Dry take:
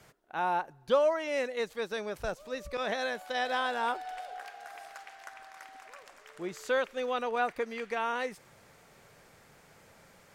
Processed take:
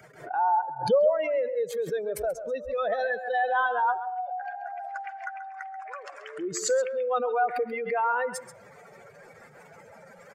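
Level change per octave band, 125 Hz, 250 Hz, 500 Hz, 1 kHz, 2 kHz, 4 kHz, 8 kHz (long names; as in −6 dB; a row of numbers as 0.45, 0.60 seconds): +5.0, +0.5, +5.5, +7.0, +3.0, −3.5, +12.5 decibels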